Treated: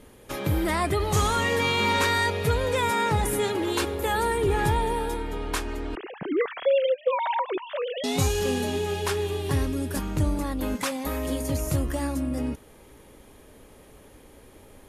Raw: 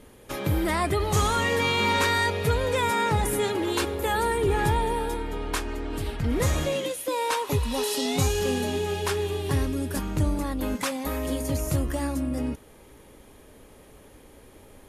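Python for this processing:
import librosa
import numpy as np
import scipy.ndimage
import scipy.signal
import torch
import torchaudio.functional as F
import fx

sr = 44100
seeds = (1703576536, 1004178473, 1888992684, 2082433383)

y = fx.sine_speech(x, sr, at=(5.95, 8.04))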